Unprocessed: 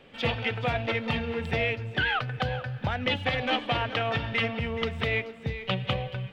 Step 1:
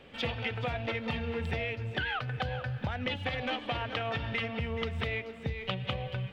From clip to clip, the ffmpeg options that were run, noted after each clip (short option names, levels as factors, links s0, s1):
-af "equalizer=f=74:w=4.8:g=9,acompressor=threshold=0.0316:ratio=6"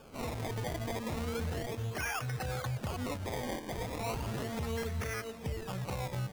-af "alimiter=level_in=1.5:limit=0.0631:level=0:latency=1:release=36,volume=0.668,acrusher=samples=22:mix=1:aa=0.000001:lfo=1:lforange=22:lforate=0.35"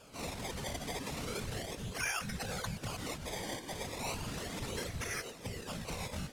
-af "highshelf=f=2200:g=11,afftfilt=real='hypot(re,im)*cos(2*PI*random(0))':imag='hypot(re,im)*sin(2*PI*random(1))':win_size=512:overlap=0.75,lowpass=11000,volume=1.12"